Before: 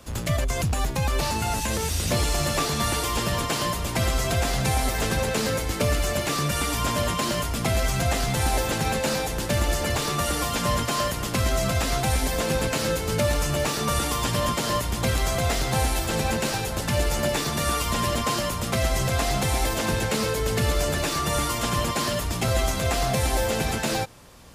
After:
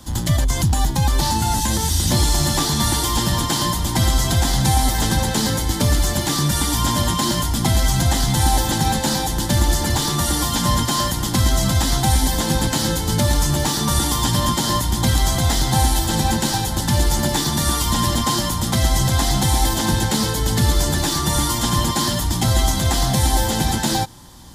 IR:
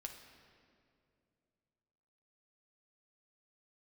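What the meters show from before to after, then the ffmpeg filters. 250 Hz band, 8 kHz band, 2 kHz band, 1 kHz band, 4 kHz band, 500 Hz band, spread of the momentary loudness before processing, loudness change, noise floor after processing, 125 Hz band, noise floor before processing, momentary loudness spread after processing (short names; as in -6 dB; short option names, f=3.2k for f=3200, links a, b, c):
+7.5 dB, +7.5 dB, +1.0 dB, +5.0 dB, +7.0 dB, -1.0 dB, 2 LU, +6.0 dB, -24 dBFS, +7.5 dB, -29 dBFS, 2 LU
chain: -af "superequalizer=7b=0.316:8b=0.355:10b=0.447:11b=0.562:12b=0.282,volume=7.5dB"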